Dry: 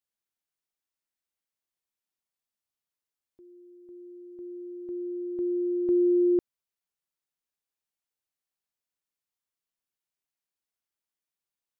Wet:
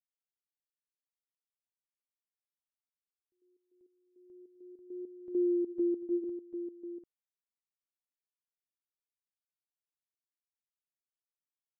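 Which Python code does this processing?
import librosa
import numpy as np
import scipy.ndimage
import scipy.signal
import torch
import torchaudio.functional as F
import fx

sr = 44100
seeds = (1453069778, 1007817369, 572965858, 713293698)

p1 = fx.doppler_pass(x, sr, speed_mps=7, closest_m=1.5, pass_at_s=5.44)
p2 = fx.step_gate(p1, sr, bpm=101, pattern='.x..xx.x', floor_db=-12.0, edge_ms=4.5)
y = p2 + fx.echo_single(p2, sr, ms=744, db=-9.0, dry=0)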